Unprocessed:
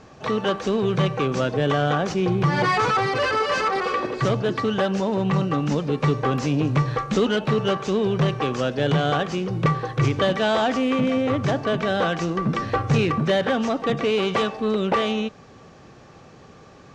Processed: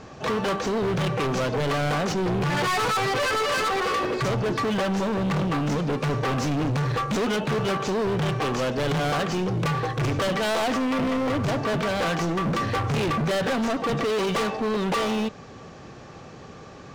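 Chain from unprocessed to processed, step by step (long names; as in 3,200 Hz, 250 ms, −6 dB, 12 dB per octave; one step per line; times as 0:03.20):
hard clipping −26.5 dBFS, distortion −6 dB
level +4 dB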